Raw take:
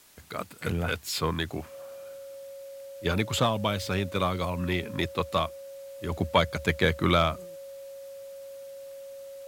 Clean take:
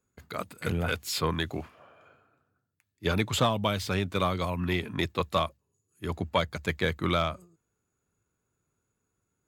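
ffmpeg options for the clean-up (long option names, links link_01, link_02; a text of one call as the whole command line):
ffmpeg -i in.wav -af "bandreject=frequency=550:width=30,agate=range=-21dB:threshold=-35dB,asetnsamples=nb_out_samples=441:pad=0,asendcmd='6.12 volume volume -4dB',volume=0dB" out.wav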